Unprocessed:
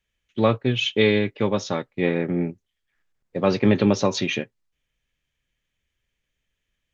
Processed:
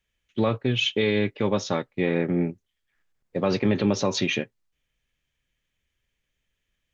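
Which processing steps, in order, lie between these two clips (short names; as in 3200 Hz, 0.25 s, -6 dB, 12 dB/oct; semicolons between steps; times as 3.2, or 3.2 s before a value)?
limiter -12.5 dBFS, peak gain reduction 7 dB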